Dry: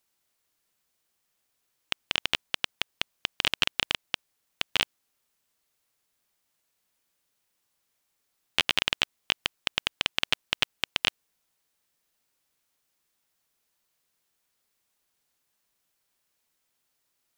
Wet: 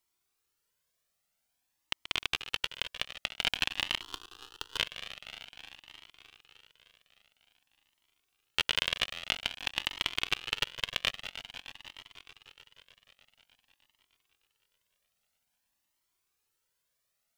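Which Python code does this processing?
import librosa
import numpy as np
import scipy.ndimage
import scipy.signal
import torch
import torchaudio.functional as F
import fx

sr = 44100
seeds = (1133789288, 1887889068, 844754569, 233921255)

y = fx.reverse_delay_fb(x, sr, ms=153, feedback_pct=82, wet_db=-13.0)
y = fx.fixed_phaser(y, sr, hz=600.0, stages=6, at=(4.01, 4.77))
y = fx.comb_cascade(y, sr, direction='rising', hz=0.5)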